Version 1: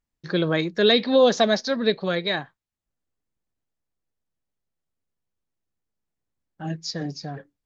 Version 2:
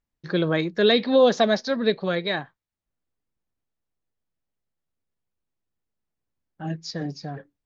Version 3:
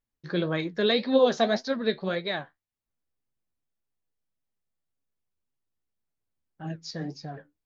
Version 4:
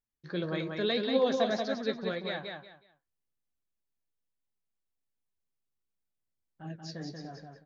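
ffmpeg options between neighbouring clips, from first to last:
ffmpeg -i in.wav -af "lowpass=frequency=3900:poles=1" out.wav
ffmpeg -i in.wav -af "flanger=delay=7.1:depth=6.5:regen=54:speed=1.8:shape=sinusoidal" out.wav
ffmpeg -i in.wav -af "aecho=1:1:184|368|552:0.596|0.143|0.0343,volume=-6.5dB" out.wav

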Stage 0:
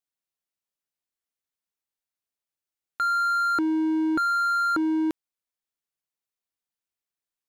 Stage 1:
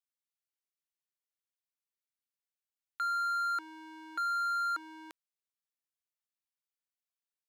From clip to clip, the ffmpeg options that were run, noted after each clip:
ffmpeg -i in.wav -af "highpass=1100,volume=-7dB" out.wav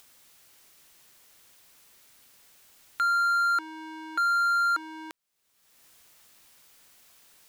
ffmpeg -i in.wav -af "acompressor=mode=upward:threshold=-44dB:ratio=2.5,volume=8dB" out.wav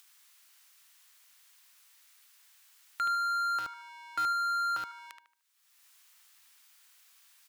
ffmpeg -i in.wav -filter_complex "[0:a]asplit=2[link_01][link_02];[link_02]adelay=75,lowpass=frequency=3200:poles=1,volume=-5dB,asplit=2[link_03][link_04];[link_04]adelay=75,lowpass=frequency=3200:poles=1,volume=0.36,asplit=2[link_05][link_06];[link_06]adelay=75,lowpass=frequency=3200:poles=1,volume=0.36,asplit=2[link_07][link_08];[link_08]adelay=75,lowpass=frequency=3200:poles=1,volume=0.36[link_09];[link_01][link_03][link_05][link_07][link_09]amix=inputs=5:normalize=0,acrossover=split=890[link_10][link_11];[link_10]acrusher=bits=5:mix=0:aa=0.000001[link_12];[link_12][link_11]amix=inputs=2:normalize=0,volume=-4dB" out.wav

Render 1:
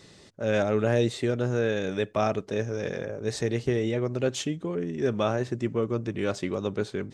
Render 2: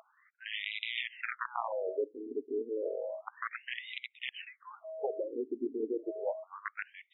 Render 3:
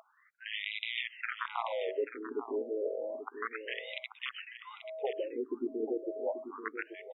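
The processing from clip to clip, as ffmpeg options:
ffmpeg -i in.wav -af "aeval=exprs='val(0)+0.0141*sin(2*PI*640*n/s)':channel_layout=same,aeval=exprs='(mod(7.08*val(0)+1,2)-1)/7.08':channel_layout=same,afftfilt=real='re*between(b*sr/1024,310*pow(2800/310,0.5+0.5*sin(2*PI*0.31*pts/sr))/1.41,310*pow(2800/310,0.5+0.5*sin(2*PI*0.31*pts/sr))*1.41)':imag='im*between(b*sr/1024,310*pow(2800/310,0.5+0.5*sin(2*PI*0.31*pts/sr))/1.41,310*pow(2800/310,0.5+0.5*sin(2*PI*0.31*pts/sr))*1.41)':win_size=1024:overlap=0.75,volume=-2.5dB" out.wav
ffmpeg -i in.wav -af "aecho=1:1:836:0.299" out.wav

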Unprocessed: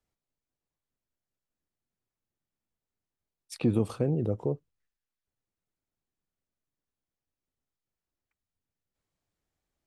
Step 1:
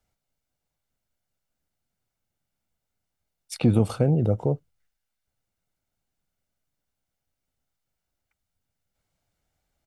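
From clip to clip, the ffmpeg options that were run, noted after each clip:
ffmpeg -i in.wav -af "aecho=1:1:1.4:0.38,volume=6.5dB" out.wav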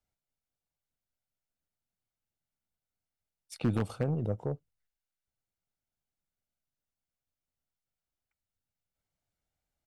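ffmpeg -i in.wav -af "aeval=exprs='0.447*(cos(1*acos(clip(val(0)/0.447,-1,1)))-cos(1*PI/2))+0.0562*(cos(3*acos(clip(val(0)/0.447,-1,1)))-cos(3*PI/2))+0.0112*(cos(6*acos(clip(val(0)/0.447,-1,1)))-cos(6*PI/2))':channel_layout=same,aeval=exprs='0.266*(abs(mod(val(0)/0.266+3,4)-2)-1)':channel_layout=same,volume=-6.5dB" out.wav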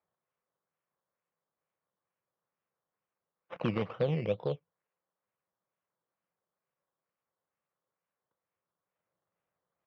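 ffmpeg -i in.wav -af "acrusher=samples=14:mix=1:aa=0.000001:lfo=1:lforange=8.4:lforate=2.2,highpass=150,equalizer=frequency=170:width_type=q:width=4:gain=4,equalizer=frequency=260:width_type=q:width=4:gain=-7,equalizer=frequency=520:width_type=q:width=4:gain=7,equalizer=frequency=1100:width_type=q:width=4:gain=6,lowpass=frequency=3300:width=0.5412,lowpass=frequency=3300:width=1.3066" out.wav

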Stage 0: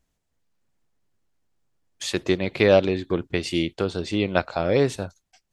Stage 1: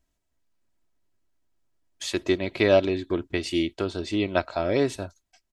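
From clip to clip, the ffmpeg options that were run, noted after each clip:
ffmpeg -i in.wav -af "aecho=1:1:3.1:0.45,volume=-3dB" out.wav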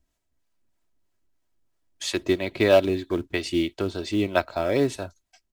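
ffmpeg -i in.wav -filter_complex "[0:a]acrossover=split=430[link_01][link_02];[link_01]aeval=exprs='val(0)*(1-0.5/2+0.5/2*cos(2*PI*3.1*n/s))':channel_layout=same[link_03];[link_02]aeval=exprs='val(0)*(1-0.5/2-0.5/2*cos(2*PI*3.1*n/s))':channel_layout=same[link_04];[link_03][link_04]amix=inputs=2:normalize=0,asplit=2[link_05][link_06];[link_06]acrusher=bits=4:mode=log:mix=0:aa=0.000001,volume=-8dB[link_07];[link_05][link_07]amix=inputs=2:normalize=0" out.wav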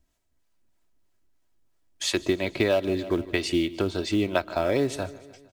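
ffmpeg -i in.wav -af "aecho=1:1:152|304|456|608:0.0944|0.0529|0.0296|0.0166,acompressor=threshold=-22dB:ratio=6,volume=2.5dB" out.wav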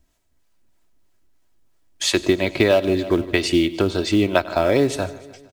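ffmpeg -i in.wav -af "aecho=1:1:97:0.0944,volume=6.5dB" out.wav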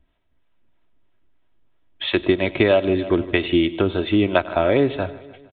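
ffmpeg -i in.wav -af "aresample=8000,aresample=44100" out.wav

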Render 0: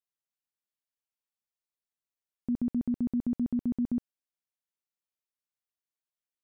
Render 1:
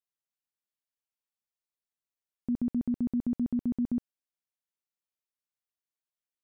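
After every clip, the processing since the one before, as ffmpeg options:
ffmpeg -i in.wav -af anull out.wav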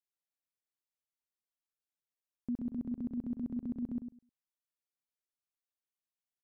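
ffmpeg -i in.wav -filter_complex "[0:a]asplit=2[link_01][link_02];[link_02]adelay=103,lowpass=frequency=880:poles=1,volume=-8dB,asplit=2[link_03][link_04];[link_04]adelay=103,lowpass=frequency=880:poles=1,volume=0.18,asplit=2[link_05][link_06];[link_06]adelay=103,lowpass=frequency=880:poles=1,volume=0.18[link_07];[link_01][link_03][link_05][link_07]amix=inputs=4:normalize=0,volume=-6dB" out.wav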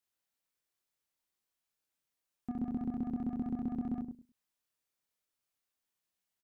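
ffmpeg -i in.wav -filter_complex "[0:a]asoftclip=type=tanh:threshold=-36.5dB,asplit=2[link_01][link_02];[link_02]adelay=27,volume=-2dB[link_03];[link_01][link_03]amix=inputs=2:normalize=0,volume=4.5dB" out.wav

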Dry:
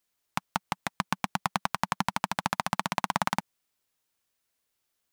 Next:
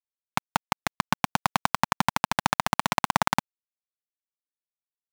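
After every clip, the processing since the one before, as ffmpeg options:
ffmpeg -i in.wav -filter_complex "[0:a]asplit=2[link_01][link_02];[link_02]alimiter=limit=-13.5dB:level=0:latency=1:release=21,volume=-2dB[link_03];[link_01][link_03]amix=inputs=2:normalize=0,aeval=exprs='val(0)*gte(abs(val(0)),0.0422)':channel_layout=same,volume=2dB" out.wav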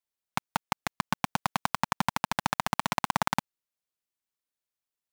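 ffmpeg -i in.wav -af "alimiter=limit=-11dB:level=0:latency=1:release=25,volume=4dB" out.wav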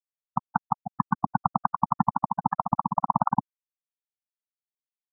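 ffmpeg -i in.wav -af "acontrast=88,afftfilt=real='re*gte(hypot(re,im),0.282)':imag='im*gte(hypot(re,im),0.282)':win_size=1024:overlap=0.75" out.wav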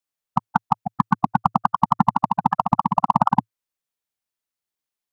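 ffmpeg -i in.wav -filter_complex "[0:a]adynamicequalizer=threshold=0.00282:dfrequency=110:dqfactor=5.6:tfrequency=110:tqfactor=5.6:attack=5:release=100:ratio=0.375:range=2:mode=cutabove:tftype=bell,asplit=2[link_01][link_02];[link_02]asoftclip=type=hard:threshold=-22.5dB,volume=-8.5dB[link_03];[link_01][link_03]amix=inputs=2:normalize=0,volume=5dB" out.wav

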